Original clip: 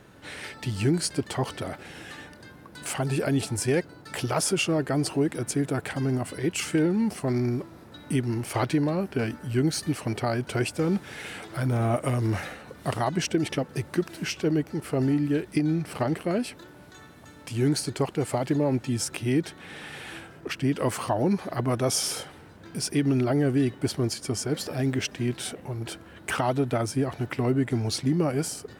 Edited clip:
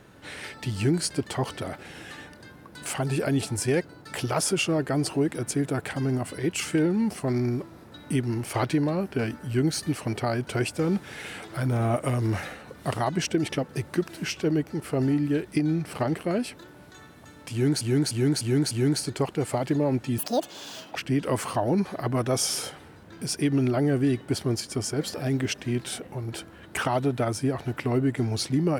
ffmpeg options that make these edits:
-filter_complex "[0:a]asplit=7[a][b][c][d][e][f][g];[a]atrim=end=17.812[h];[b]atrim=start=17.508:end=17.812[i];[c]atrim=start=17.508:end=17.812[j];[d]atrim=start=17.508:end=17.812[k];[e]atrim=start=17.508:end=18.984[l];[f]atrim=start=18.98:end=20.49,asetpts=PTS-STARTPTS,asetrate=85554,aresample=44100,atrim=end_sample=34325,asetpts=PTS-STARTPTS[m];[g]atrim=start=20.486[n];[h][i]acrossfade=d=0.004:c1=hsin:c2=hsin[o];[o][j]acrossfade=d=0.004:c1=hsin:c2=hsin[p];[p][k]acrossfade=d=0.004:c1=hsin:c2=hsin[q];[q][l]acrossfade=d=0.004:c1=hsin:c2=hsin[r];[r][m]acrossfade=d=0.004:c1=hsin:c2=hsin[s];[s][n]acrossfade=d=0.004:c1=hsin:c2=hsin"

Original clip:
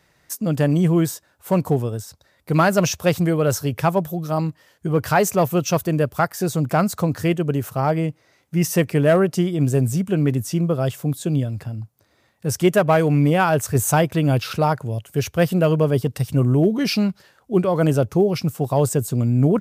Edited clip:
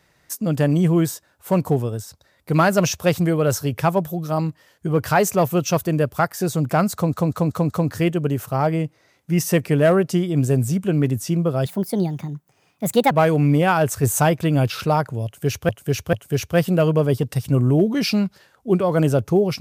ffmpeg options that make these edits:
-filter_complex "[0:a]asplit=9[a][b][c][d][e][f][g][h][i];[a]atrim=end=7.132[j];[b]atrim=start=6.938:end=7.132[k];[c]atrim=start=6.938:end=7.132[l];[d]atrim=start=6.938:end=7.132[m];[e]atrim=start=6.938:end=10.904[n];[f]atrim=start=10.9:end=12.83,asetpts=PTS-STARTPTS,asetrate=58653,aresample=44100[o];[g]atrim=start=12.826:end=15.412[p];[h]atrim=start=14.968:end=15.412[q];[i]atrim=start=14.968[r];[j][k]acrossfade=d=0.004:c1=hsin:c2=hsin[s];[s][l]acrossfade=d=0.004:c1=hsin:c2=hsin[t];[t][m]acrossfade=d=0.004:c1=hsin:c2=hsin[u];[u][n]acrossfade=d=0.004:c1=hsin:c2=hsin[v];[v][o]acrossfade=d=0.004:c1=hsin:c2=hsin[w];[w][p]acrossfade=d=0.004:c1=hsin:c2=hsin[x];[x][q]acrossfade=d=0.004:c1=hsin:c2=hsin[y];[y][r]acrossfade=d=0.004:c1=hsin:c2=hsin"

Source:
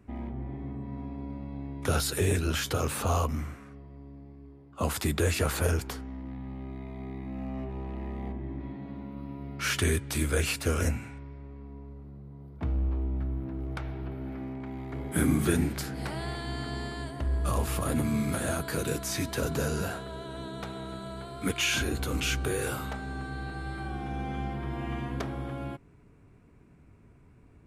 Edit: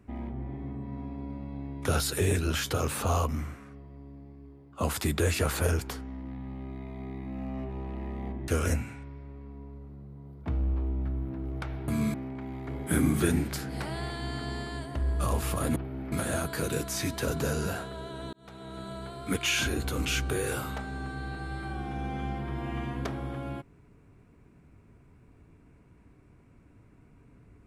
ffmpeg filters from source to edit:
-filter_complex "[0:a]asplit=7[a][b][c][d][e][f][g];[a]atrim=end=8.482[h];[b]atrim=start=10.628:end=14.032[i];[c]atrim=start=18.008:end=18.272[j];[d]atrim=start=14.388:end=18.012[k];[e]atrim=start=14.028:end=14.392[l];[f]atrim=start=18.268:end=20.48,asetpts=PTS-STARTPTS,afade=t=out:st=2.208:d=0.004:c=hsin[m];[g]atrim=start=20.48,asetpts=PTS-STARTPTS,afade=t=in:d=0.54[n];[h][i]acrossfade=d=0.004:c1=hsin:c2=hsin[o];[o][j]acrossfade=d=0.004:c1=hsin:c2=hsin[p];[p][k]acrossfade=d=0.004:c1=hsin:c2=hsin[q];[q][l]acrossfade=d=0.004:c1=hsin:c2=hsin[r];[m][n]concat=n=2:v=0:a=1[s];[r][s]acrossfade=d=0.004:c1=hsin:c2=hsin"

